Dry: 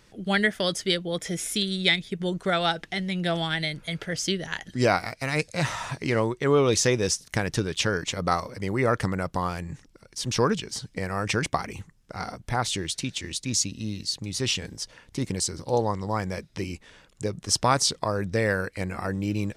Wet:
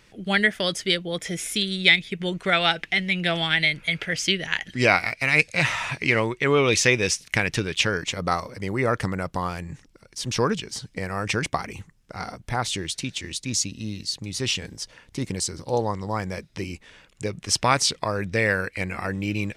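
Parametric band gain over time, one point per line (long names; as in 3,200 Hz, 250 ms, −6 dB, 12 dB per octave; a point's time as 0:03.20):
parametric band 2,400 Hz 0.93 octaves
0:01.71 +6 dB
0:02.21 +13 dB
0:07.45 +13 dB
0:08.25 +2.5 dB
0:16.74 +2.5 dB
0:17.34 +10 dB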